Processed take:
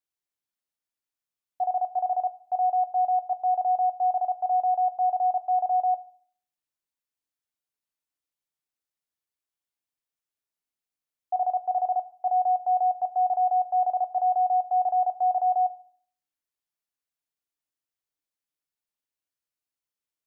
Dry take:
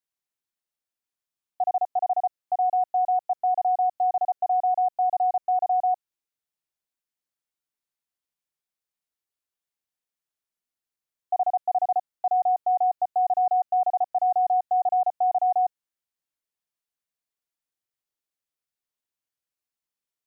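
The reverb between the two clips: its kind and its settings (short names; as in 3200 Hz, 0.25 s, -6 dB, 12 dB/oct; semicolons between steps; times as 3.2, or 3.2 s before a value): FDN reverb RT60 0.5 s, low-frequency decay 1.45×, high-frequency decay 1×, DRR 10.5 dB; gain -3 dB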